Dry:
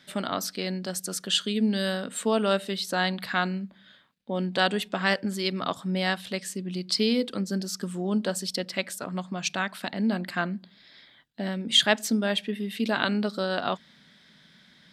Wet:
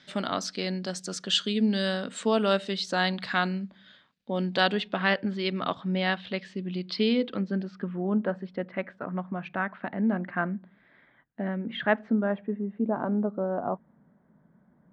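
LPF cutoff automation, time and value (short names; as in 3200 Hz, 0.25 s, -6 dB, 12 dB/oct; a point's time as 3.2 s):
LPF 24 dB/oct
4.48 s 6800 Hz
5.01 s 3700 Hz
7.11 s 3700 Hz
8.18 s 1900 Hz
11.96 s 1900 Hz
12.81 s 1000 Hz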